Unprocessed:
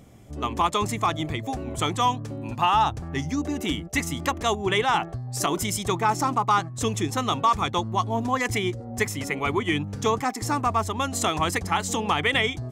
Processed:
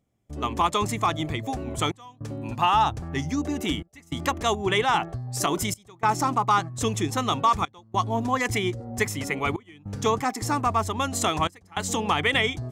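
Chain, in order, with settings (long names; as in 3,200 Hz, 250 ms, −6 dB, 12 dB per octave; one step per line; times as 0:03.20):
gate pattern "..xxxxxxxxxxx" 102 BPM −24 dB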